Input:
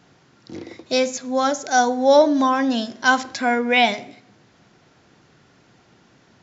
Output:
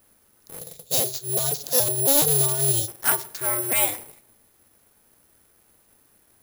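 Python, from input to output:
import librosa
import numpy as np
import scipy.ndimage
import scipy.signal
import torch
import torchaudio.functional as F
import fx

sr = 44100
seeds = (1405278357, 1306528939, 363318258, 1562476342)

y = fx.cycle_switch(x, sr, every=2, mode='inverted')
y = fx.graphic_eq(y, sr, hz=(125, 250, 500, 1000, 2000, 4000), db=(11, -7, 7, -9, -10, 11), at=(0.59, 2.88))
y = (np.kron(y[::4], np.eye(4)[0]) * 4)[:len(y)]
y = y * 10.0 ** (-11.0 / 20.0)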